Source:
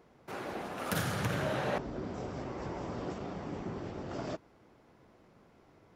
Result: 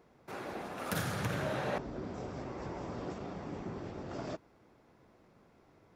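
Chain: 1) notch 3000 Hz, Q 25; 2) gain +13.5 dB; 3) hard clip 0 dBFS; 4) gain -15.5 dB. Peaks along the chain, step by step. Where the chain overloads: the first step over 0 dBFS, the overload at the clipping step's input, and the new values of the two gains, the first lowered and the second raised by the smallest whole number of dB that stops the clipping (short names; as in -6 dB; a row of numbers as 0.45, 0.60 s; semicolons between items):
-17.0, -3.5, -3.5, -19.0 dBFS; no overload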